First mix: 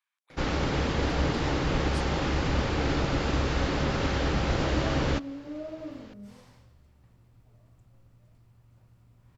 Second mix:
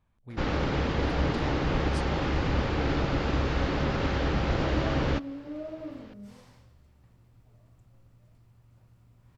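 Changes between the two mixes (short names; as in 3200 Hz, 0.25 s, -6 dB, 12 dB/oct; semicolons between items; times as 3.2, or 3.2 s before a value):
speech: remove Bessel high-pass 1900 Hz, order 4; first sound: add air absorption 110 m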